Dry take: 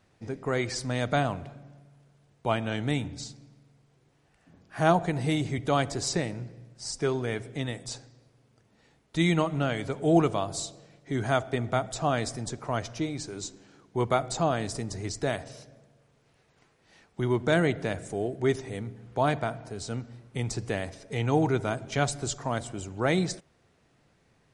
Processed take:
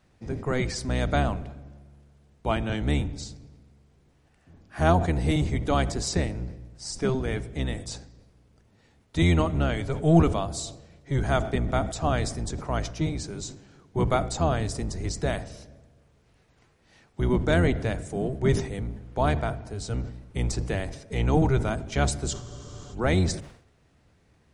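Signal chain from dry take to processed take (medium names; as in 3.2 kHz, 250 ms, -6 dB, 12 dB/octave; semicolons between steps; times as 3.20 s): octave divider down 1 oct, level +3 dB; spectral freeze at 22.35 s, 0.57 s; decay stretcher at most 100 dB/s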